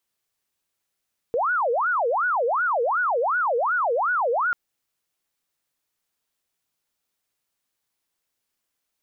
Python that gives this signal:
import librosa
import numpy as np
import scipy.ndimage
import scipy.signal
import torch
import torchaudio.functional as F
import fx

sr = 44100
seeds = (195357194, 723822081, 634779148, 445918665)

y = fx.siren(sr, length_s=3.19, kind='wail', low_hz=461.0, high_hz=1480.0, per_s=2.7, wave='sine', level_db=-19.5)